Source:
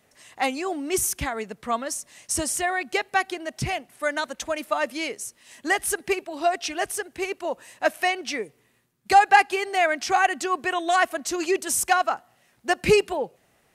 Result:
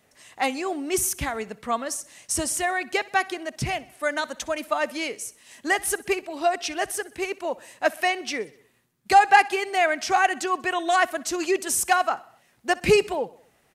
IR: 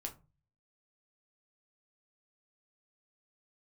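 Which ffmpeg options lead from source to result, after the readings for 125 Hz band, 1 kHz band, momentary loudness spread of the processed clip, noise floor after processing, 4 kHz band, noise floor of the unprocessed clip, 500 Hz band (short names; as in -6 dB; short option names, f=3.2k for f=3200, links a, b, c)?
0.0 dB, 0.0 dB, 12 LU, -63 dBFS, 0.0 dB, -64 dBFS, 0.0 dB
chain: -af "aecho=1:1:63|126|189|252:0.0841|0.048|0.0273|0.0156"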